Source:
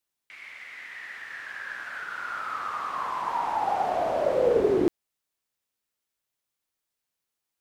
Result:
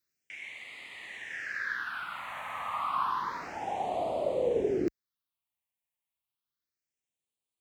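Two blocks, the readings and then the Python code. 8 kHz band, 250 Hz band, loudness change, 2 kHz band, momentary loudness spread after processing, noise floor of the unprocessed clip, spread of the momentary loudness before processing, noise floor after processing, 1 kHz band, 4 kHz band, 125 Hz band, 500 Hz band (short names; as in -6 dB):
n/a, -6.0 dB, -6.0 dB, -1.5 dB, 14 LU, -85 dBFS, 17 LU, under -85 dBFS, -5.0 dB, -1.0 dB, -4.5 dB, -6.0 dB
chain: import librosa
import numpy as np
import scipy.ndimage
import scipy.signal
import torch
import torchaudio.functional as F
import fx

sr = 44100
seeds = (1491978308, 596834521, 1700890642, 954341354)

y = scipy.signal.sosfilt(scipy.signal.butter(2, 43.0, 'highpass', fs=sr, output='sos'), x)
y = fx.rider(y, sr, range_db=4, speed_s=0.5)
y = fx.phaser_stages(y, sr, stages=6, low_hz=370.0, high_hz=1600.0, hz=0.3, feedback_pct=5)
y = y * 10.0 ** (-1.0 / 20.0)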